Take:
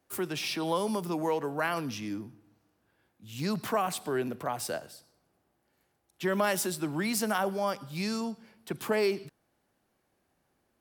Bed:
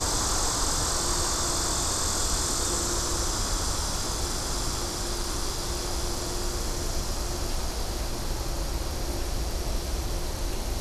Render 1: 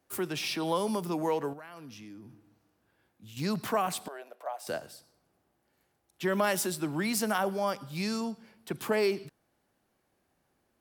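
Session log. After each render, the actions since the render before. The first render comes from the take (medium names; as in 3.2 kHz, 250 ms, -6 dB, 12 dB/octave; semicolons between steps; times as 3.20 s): 1.53–3.37 s: compression 5:1, threshold -45 dBFS; 4.08–4.67 s: ladder high-pass 560 Hz, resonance 60%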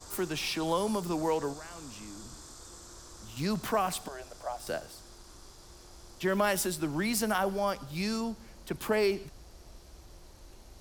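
add bed -22 dB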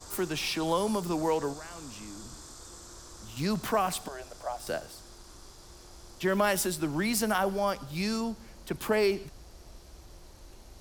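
trim +1.5 dB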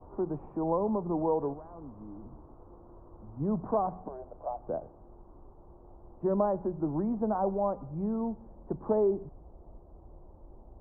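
steep low-pass 980 Hz 36 dB/octave; hum notches 60/120/180 Hz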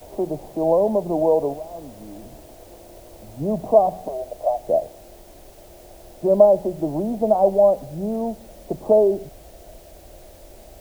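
resonant low-pass 640 Hz, resonance Q 4.9; in parallel at -4.5 dB: word length cut 8-bit, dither triangular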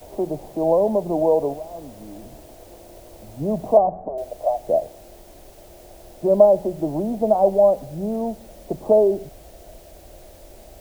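3.77–4.18 s: low-pass 1.2 kHz 24 dB/octave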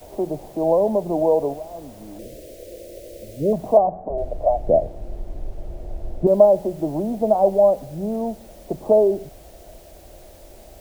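2.19–3.53 s: FFT filter 260 Hz 0 dB, 550 Hz +12 dB, 870 Hz -23 dB, 2 kHz +3 dB; 4.10–6.27 s: tilt EQ -4 dB/octave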